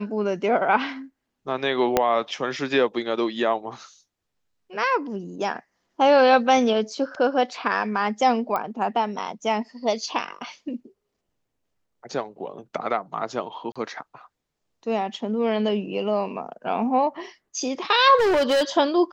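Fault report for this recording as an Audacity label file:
1.970000	1.970000	pop -4 dBFS
8.560000	8.560000	pop -14 dBFS
13.720000	13.760000	gap 36 ms
18.170000	18.630000	clipped -17 dBFS

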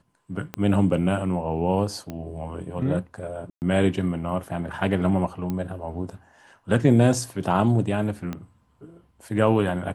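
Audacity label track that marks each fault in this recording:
0.540000	0.540000	pop -15 dBFS
2.100000	2.100000	pop -20 dBFS
3.500000	3.620000	gap 0.119 s
5.500000	5.500000	pop -17 dBFS
8.330000	8.330000	pop -18 dBFS

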